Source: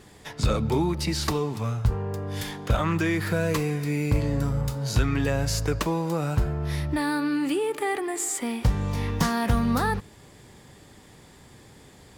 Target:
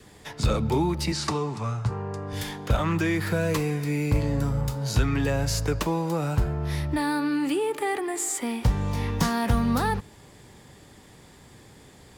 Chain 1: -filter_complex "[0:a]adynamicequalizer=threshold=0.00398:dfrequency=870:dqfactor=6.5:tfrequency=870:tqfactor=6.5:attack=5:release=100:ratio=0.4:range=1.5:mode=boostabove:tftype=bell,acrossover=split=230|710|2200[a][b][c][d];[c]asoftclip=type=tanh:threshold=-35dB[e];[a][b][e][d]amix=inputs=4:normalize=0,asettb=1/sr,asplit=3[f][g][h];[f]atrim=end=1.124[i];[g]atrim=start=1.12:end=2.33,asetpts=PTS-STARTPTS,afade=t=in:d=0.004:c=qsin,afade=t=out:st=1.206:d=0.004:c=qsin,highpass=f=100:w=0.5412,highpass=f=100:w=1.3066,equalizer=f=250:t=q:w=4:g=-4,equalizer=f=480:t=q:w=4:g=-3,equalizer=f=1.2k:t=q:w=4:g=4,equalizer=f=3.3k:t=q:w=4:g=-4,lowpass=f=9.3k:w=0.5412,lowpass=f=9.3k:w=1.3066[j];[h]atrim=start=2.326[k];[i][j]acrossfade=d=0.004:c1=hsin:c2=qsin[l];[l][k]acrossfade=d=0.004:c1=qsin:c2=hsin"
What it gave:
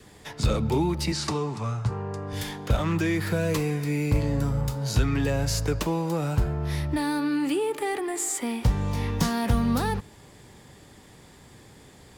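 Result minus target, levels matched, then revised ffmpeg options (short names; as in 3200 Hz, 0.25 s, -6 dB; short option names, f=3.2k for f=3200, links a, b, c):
soft clip: distortion +9 dB
-filter_complex "[0:a]adynamicequalizer=threshold=0.00398:dfrequency=870:dqfactor=6.5:tfrequency=870:tqfactor=6.5:attack=5:release=100:ratio=0.4:range=1.5:mode=boostabove:tftype=bell,acrossover=split=230|710|2200[a][b][c][d];[c]asoftclip=type=tanh:threshold=-26dB[e];[a][b][e][d]amix=inputs=4:normalize=0,asettb=1/sr,asplit=3[f][g][h];[f]atrim=end=1.124[i];[g]atrim=start=1.12:end=2.33,asetpts=PTS-STARTPTS,afade=t=in:d=0.004:c=qsin,afade=t=out:st=1.206:d=0.004:c=qsin,highpass=f=100:w=0.5412,highpass=f=100:w=1.3066,equalizer=f=250:t=q:w=4:g=-4,equalizer=f=480:t=q:w=4:g=-3,equalizer=f=1.2k:t=q:w=4:g=4,equalizer=f=3.3k:t=q:w=4:g=-4,lowpass=f=9.3k:w=0.5412,lowpass=f=9.3k:w=1.3066[j];[h]atrim=start=2.326[k];[i][j]acrossfade=d=0.004:c1=hsin:c2=qsin[l];[l][k]acrossfade=d=0.004:c1=qsin:c2=hsin"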